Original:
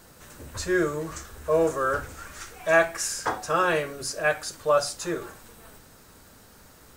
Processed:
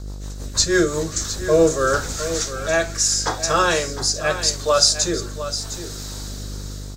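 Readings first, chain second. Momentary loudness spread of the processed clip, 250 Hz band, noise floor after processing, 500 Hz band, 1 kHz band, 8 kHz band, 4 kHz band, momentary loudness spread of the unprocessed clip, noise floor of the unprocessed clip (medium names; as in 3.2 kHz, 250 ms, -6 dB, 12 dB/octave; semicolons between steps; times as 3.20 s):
16 LU, +7.0 dB, -32 dBFS, +5.0 dB, +3.5 dB, +14.0 dB, +16.0 dB, 17 LU, -53 dBFS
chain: high-order bell 5.2 kHz +12.5 dB 1.3 oct; level rider gain up to 13 dB; mains buzz 50 Hz, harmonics 27, -30 dBFS -8 dB/octave; rotary cabinet horn 6.3 Hz, later 0.8 Hz, at 0.58 s; delay 708 ms -11.5 dB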